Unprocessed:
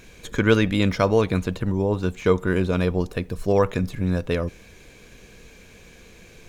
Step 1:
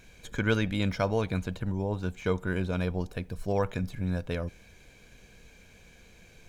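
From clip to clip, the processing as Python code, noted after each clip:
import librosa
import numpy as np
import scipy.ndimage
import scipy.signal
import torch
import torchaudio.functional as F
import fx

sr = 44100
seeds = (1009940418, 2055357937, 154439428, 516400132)

y = x + 0.31 * np.pad(x, (int(1.3 * sr / 1000.0), 0))[:len(x)]
y = F.gain(torch.from_numpy(y), -8.0).numpy()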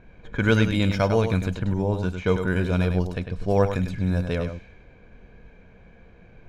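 y = x + 10.0 ** (-8.0 / 20.0) * np.pad(x, (int(101 * sr / 1000.0), 0))[:len(x)]
y = fx.hpss(y, sr, part='percussive', gain_db=-3)
y = fx.env_lowpass(y, sr, base_hz=1200.0, full_db=-26.0)
y = F.gain(torch.from_numpy(y), 7.0).numpy()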